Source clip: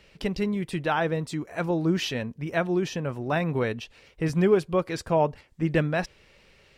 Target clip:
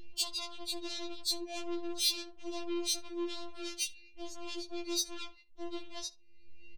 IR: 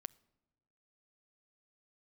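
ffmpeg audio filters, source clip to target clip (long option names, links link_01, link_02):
-filter_complex "[0:a]anlmdn=0.0398,lowpass=5200,afftfilt=real='hypot(re,im)*cos(PI*b)':imag='0':win_size=2048:overlap=0.75,aecho=1:1:6.3:0.67,acompressor=mode=upward:threshold=-32dB:ratio=2.5,alimiter=limit=-17.5dB:level=0:latency=1:release=22,acompressor=threshold=-36dB:ratio=6,equalizer=frequency=160:width_type=o:width=0.67:gain=4,equalizer=frequency=400:width_type=o:width=0.67:gain=7,equalizer=frequency=1600:width_type=o:width=0.67:gain=-8,aeval=exprs='(tanh(112*val(0)+0.25)-tanh(0.25))/112':channel_layout=same,aexciter=amount=8.8:drive=9:freq=2800,asplit=2[link_01][link_02];[link_02]adelay=66,lowpass=frequency=1600:poles=1,volume=-13.5dB,asplit=2[link_03][link_04];[link_04]adelay=66,lowpass=frequency=1600:poles=1,volume=0.24,asplit=2[link_05][link_06];[link_06]adelay=66,lowpass=frequency=1600:poles=1,volume=0.24[link_07];[link_01][link_03][link_05][link_07]amix=inputs=4:normalize=0,afftfilt=real='re*4*eq(mod(b,16),0)':imag='im*4*eq(mod(b,16),0)':win_size=2048:overlap=0.75,volume=-1dB"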